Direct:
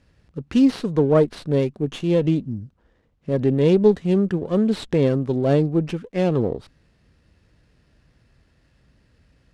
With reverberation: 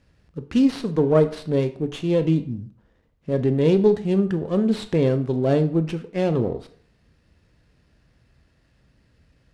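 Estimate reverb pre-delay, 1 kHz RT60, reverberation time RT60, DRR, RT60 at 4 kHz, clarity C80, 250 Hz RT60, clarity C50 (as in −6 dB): 16 ms, 0.55 s, 0.55 s, 9.5 dB, 0.40 s, 17.5 dB, 0.50 s, 14.0 dB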